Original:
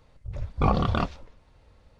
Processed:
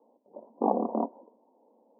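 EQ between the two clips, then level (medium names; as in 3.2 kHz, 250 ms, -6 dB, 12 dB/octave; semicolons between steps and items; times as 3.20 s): Chebyshev band-pass 220–970 Hz, order 5; +2.0 dB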